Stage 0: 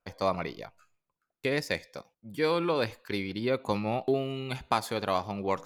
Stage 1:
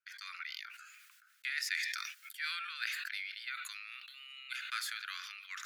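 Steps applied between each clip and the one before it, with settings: steep high-pass 1400 Hz 72 dB/oct; high shelf 2200 Hz -9.5 dB; sustainer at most 29 dB/s; gain +1.5 dB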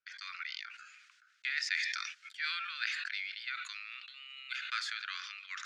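notch 880 Hz, Q 13; in parallel at -10 dB: crossover distortion -57 dBFS; on the sum: LPF 6400 Hz 24 dB/oct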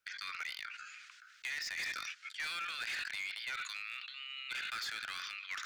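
limiter -27.5 dBFS, peak gain reduction 9.5 dB; hard clip -36 dBFS, distortion -12 dB; three-band squash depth 40%; gain +1.5 dB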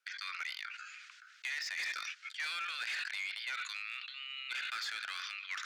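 weighting filter A

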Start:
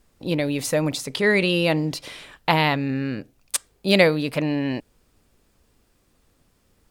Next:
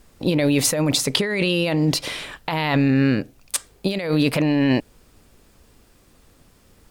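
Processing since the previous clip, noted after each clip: negative-ratio compressor -25 dBFS, ratio -1; gain +5.5 dB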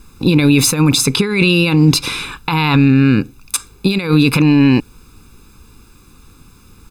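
comb 0.8 ms, depth 96%; maximiser +6.5 dB; gain -1 dB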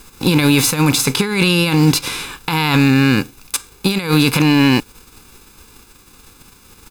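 spectral whitening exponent 0.6; gain -2 dB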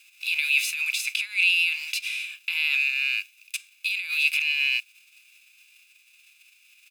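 ladder high-pass 2400 Hz, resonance 80%; gain -2.5 dB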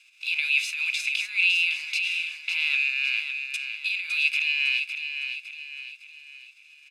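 air absorption 65 m; on a send: feedback echo 0.558 s, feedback 44%, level -7.5 dB

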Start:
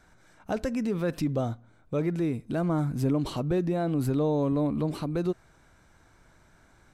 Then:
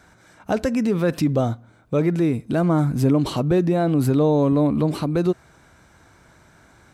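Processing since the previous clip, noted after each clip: HPF 59 Hz; gain +8 dB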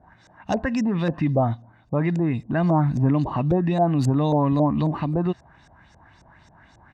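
comb 1.1 ms, depth 58%; LFO low-pass saw up 3.7 Hz 510–6800 Hz; gain -3 dB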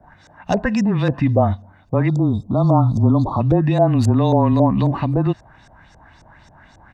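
frequency shift -20 Hz; spectral delete 2.08–3.41, 1400–3200 Hz; gain +5 dB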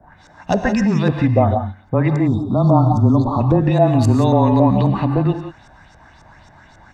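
non-linear reverb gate 0.2 s rising, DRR 5.5 dB; gain +1 dB

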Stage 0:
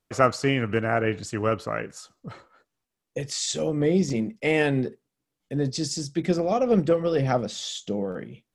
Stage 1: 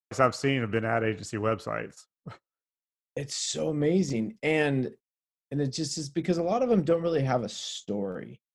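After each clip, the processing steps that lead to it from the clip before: gate -40 dBFS, range -37 dB; gain -3 dB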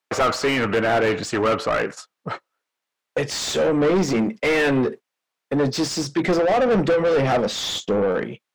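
overdrive pedal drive 32 dB, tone 1800 Hz, clips at -7 dBFS; gain -3 dB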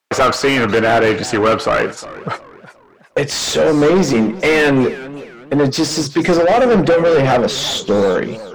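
warbling echo 0.365 s, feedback 37%, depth 194 cents, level -17 dB; gain +6.5 dB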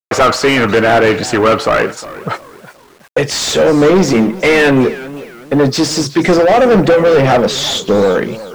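bit-crush 8-bit; gain +3 dB

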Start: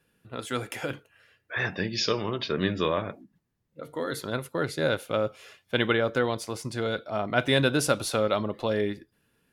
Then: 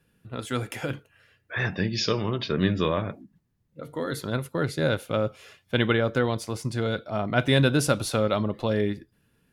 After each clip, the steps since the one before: tone controls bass +7 dB, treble 0 dB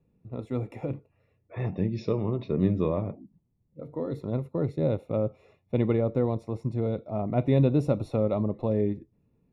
running mean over 28 samples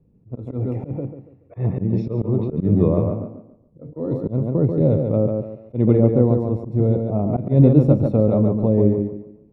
tilt shelf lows +9.5 dB; tape echo 0.142 s, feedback 34%, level -3.5 dB, low-pass 3700 Hz; auto swell 0.121 s; gain +1.5 dB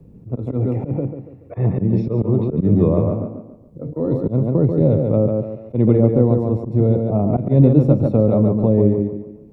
three-band squash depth 40%; gain +2 dB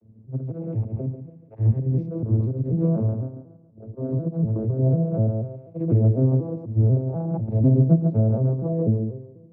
arpeggiated vocoder minor triad, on A2, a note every 0.246 s; on a send at -22.5 dB: reverb RT60 0.80 s, pre-delay 4 ms; on the sum: gain -4 dB

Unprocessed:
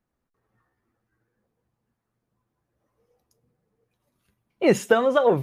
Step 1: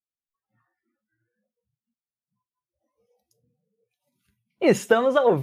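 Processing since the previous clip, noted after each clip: spectral noise reduction 30 dB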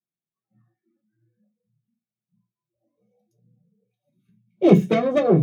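self-modulated delay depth 0.34 ms; reverb RT60 0.20 s, pre-delay 3 ms, DRR -3 dB; gain -13.5 dB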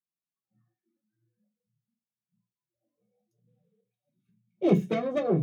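spectral gain 3.48–3.81, 390–4000 Hz +12 dB; gain -8.5 dB

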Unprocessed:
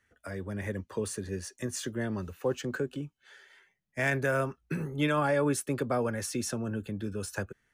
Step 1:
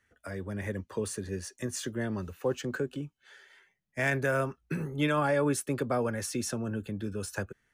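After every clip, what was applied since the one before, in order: nothing audible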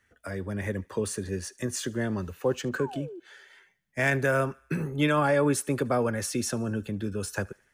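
painted sound fall, 2.78–3.2, 320–1200 Hz -44 dBFS; thinning echo 74 ms, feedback 57%, high-pass 700 Hz, level -24 dB; gain +3.5 dB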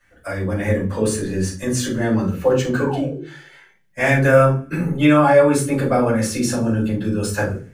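in parallel at +1 dB: vocal rider within 4 dB 2 s; on the sum: reverb RT60 0.35 s, pre-delay 4 ms, DRR -8 dB; gain -8.5 dB

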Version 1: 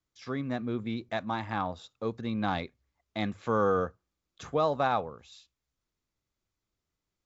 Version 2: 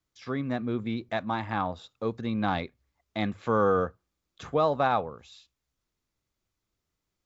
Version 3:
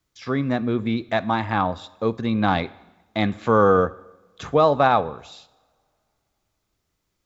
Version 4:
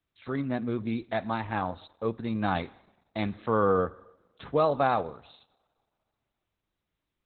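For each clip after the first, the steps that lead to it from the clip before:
dynamic EQ 6400 Hz, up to -6 dB, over -59 dBFS, Q 1.4; gain +2.5 dB
two-slope reverb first 0.96 s, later 2.9 s, from -24 dB, DRR 17.5 dB; gain +7.5 dB
gain -7 dB; Opus 8 kbps 48000 Hz

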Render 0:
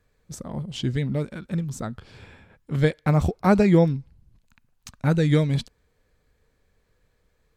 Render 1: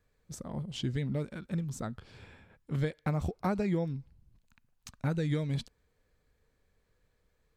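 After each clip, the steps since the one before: compressor 6:1, threshold -21 dBFS, peak gain reduction 9.5 dB; gain -6 dB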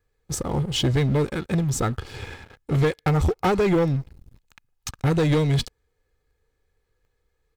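comb 2.4 ms, depth 53%; sample leveller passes 3; gain +4.5 dB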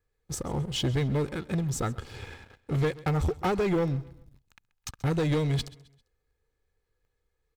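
feedback echo 0.132 s, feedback 40%, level -20.5 dB; gain -6 dB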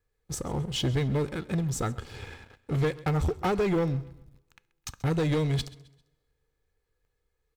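reverb, pre-delay 3 ms, DRR 19 dB

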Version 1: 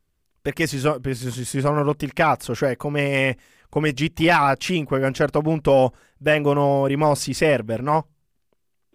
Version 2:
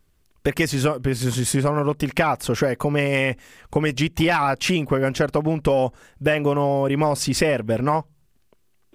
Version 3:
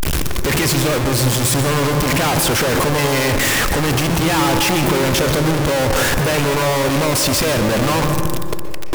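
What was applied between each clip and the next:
compressor, threshold -25 dBFS, peak gain reduction 12 dB; gain +8 dB
infinite clipping; wow and flutter 27 cents; reverb RT60 1.9 s, pre-delay 0.118 s, DRR 6.5 dB; gain +5 dB

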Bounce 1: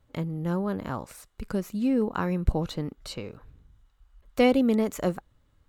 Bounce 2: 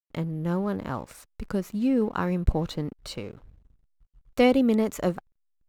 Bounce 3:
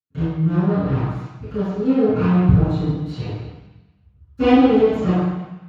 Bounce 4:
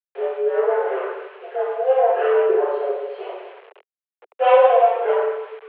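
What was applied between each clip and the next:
backlash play -48 dBFS; gain +1 dB
minimum comb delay 6.5 ms; bell 880 Hz +3.5 dB 1.8 oct; reverb RT60 1.0 s, pre-delay 3 ms, DRR -19.5 dB; gain -18 dB
expander -47 dBFS; bit-crush 7-bit; mistuned SSB +260 Hz 160–2700 Hz

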